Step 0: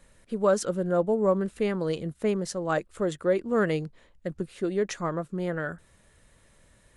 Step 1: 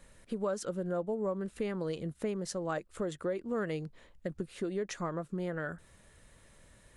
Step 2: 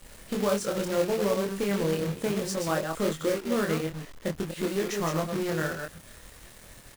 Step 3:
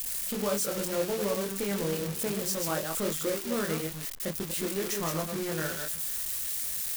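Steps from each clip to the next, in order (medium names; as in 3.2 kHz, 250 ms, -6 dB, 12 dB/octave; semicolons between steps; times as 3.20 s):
compression 3:1, threshold -34 dBFS, peak gain reduction 12 dB
chunks repeated in reverse 122 ms, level -4.5 dB; companded quantiser 4-bit; doubling 25 ms -3 dB; trim +4 dB
zero-crossing glitches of -20.5 dBFS; trim -4 dB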